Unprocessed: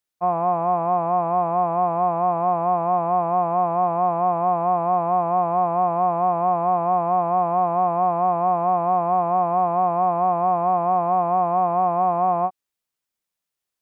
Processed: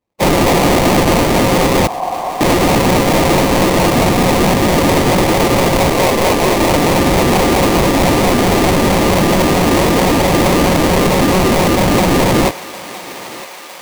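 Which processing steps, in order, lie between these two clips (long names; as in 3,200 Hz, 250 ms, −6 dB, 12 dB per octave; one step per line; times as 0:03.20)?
0:05.89–0:06.61: running median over 41 samples
mains-hum notches 60/120/180/240/300/360/420/480/540 Hz
gate on every frequency bin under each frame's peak −15 dB weak
flat-topped bell 880 Hz +14 dB
sine wavefolder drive 4 dB, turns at −20.5 dBFS
sample-rate reduction 1,500 Hz, jitter 20%
0:01.87–0:02.41: formant resonators in series a
feedback echo with a high-pass in the loop 958 ms, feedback 76%, high-pass 630 Hz, level −19 dB
boost into a limiter +23.5 dB
level −6.5 dB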